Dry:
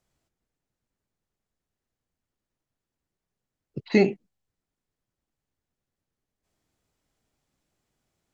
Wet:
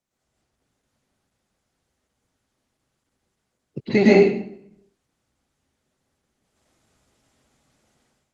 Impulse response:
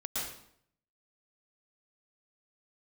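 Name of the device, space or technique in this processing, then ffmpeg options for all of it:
far-field microphone of a smart speaker: -filter_complex "[1:a]atrim=start_sample=2205[s0];[0:a][s0]afir=irnorm=-1:irlink=0,highpass=f=120:p=1,dynaudnorm=f=310:g=3:m=4.47,volume=0.794" -ar 48000 -c:a libopus -b:a 16k

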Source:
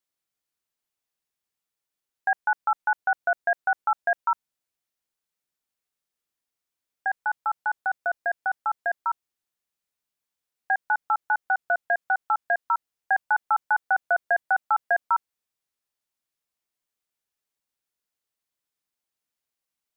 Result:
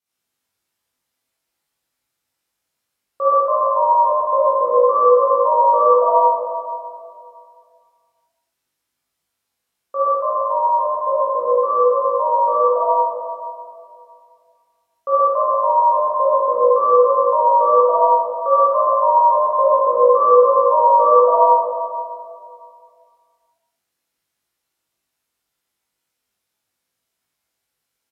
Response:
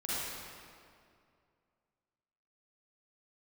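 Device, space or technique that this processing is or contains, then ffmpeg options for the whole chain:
slowed and reverbed: -filter_complex "[0:a]asetrate=31311,aresample=44100[s0];[1:a]atrim=start_sample=2205[s1];[s0][s1]afir=irnorm=-1:irlink=0,highpass=44,asplit=2[s2][s3];[s3]adelay=20,volume=0.708[s4];[s2][s4]amix=inputs=2:normalize=0,volume=1.41"

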